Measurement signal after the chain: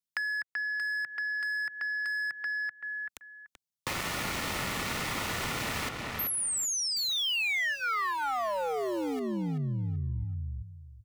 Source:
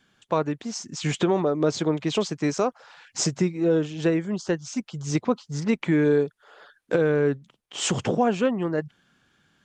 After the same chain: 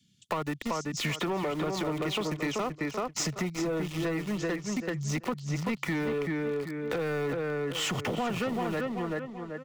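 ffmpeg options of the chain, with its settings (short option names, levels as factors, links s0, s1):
-filter_complex "[0:a]highpass=120,equalizer=f=1700:t=o:w=2.2:g=14.5,acrossover=split=230|4100[s0][s1][s2];[s1]aeval=exprs='val(0)*gte(abs(val(0)),0.0299)':c=same[s3];[s0][s3][s2]amix=inputs=3:normalize=0,lowshelf=f=220:g=9,asplit=2[s4][s5];[s5]adelay=384,lowpass=f=3500:p=1,volume=0.531,asplit=2[s6][s7];[s7]adelay=384,lowpass=f=3500:p=1,volume=0.23,asplit=2[s8][s9];[s9]adelay=384,lowpass=f=3500:p=1,volume=0.23[s10];[s4][s6][s8][s10]amix=inputs=4:normalize=0,acrossover=split=280[s11][s12];[s12]acompressor=threshold=0.178:ratio=3[s13];[s11][s13]amix=inputs=2:normalize=0,asoftclip=type=tanh:threshold=0.178,acompressor=threshold=0.0355:ratio=6,asuperstop=centerf=1600:order=4:qfactor=7.8"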